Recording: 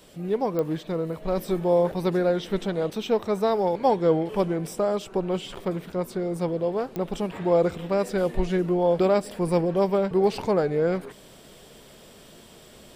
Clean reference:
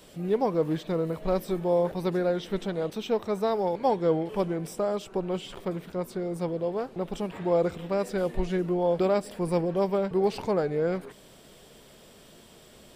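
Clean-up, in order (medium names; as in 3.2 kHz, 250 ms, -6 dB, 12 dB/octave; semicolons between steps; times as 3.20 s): de-click; trim 0 dB, from 1.37 s -3.5 dB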